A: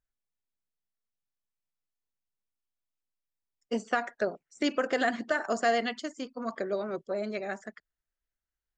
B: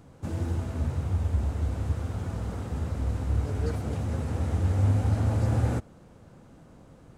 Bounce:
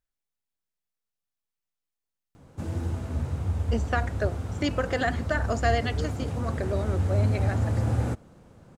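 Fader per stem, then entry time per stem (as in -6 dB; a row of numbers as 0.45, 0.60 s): +0.5, -0.5 dB; 0.00, 2.35 s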